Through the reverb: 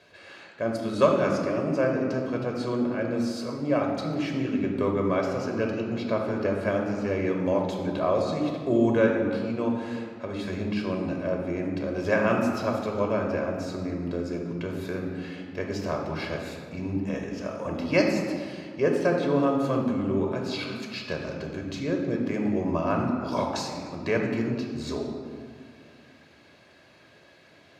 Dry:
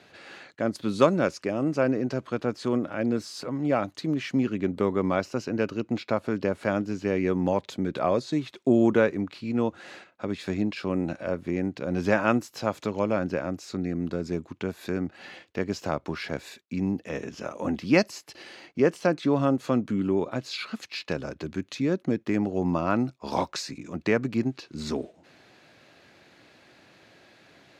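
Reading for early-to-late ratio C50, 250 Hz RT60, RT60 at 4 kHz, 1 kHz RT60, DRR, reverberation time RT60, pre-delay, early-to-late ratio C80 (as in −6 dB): 3.0 dB, 2.7 s, 1.1 s, 2.1 s, 0.5 dB, 2.2 s, 3 ms, 4.5 dB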